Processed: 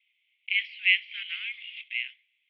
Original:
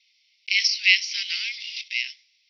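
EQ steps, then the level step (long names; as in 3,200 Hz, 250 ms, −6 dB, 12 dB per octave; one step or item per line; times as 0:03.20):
Chebyshev band-pass filter 1,100–3,300 Hz, order 4
high-frequency loss of the air 250 metres
0.0 dB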